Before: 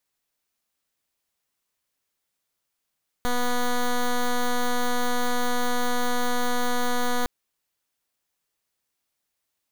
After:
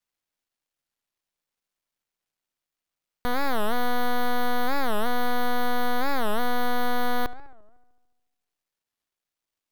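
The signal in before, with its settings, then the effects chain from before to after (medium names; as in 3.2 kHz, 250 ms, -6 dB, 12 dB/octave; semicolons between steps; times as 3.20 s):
pulse 245 Hz, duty 9% -22.5 dBFS 4.01 s
dead-time distortion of 0.06 ms; filtered feedback delay 72 ms, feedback 68%, low-pass 3.2 kHz, level -16 dB; warped record 45 rpm, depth 250 cents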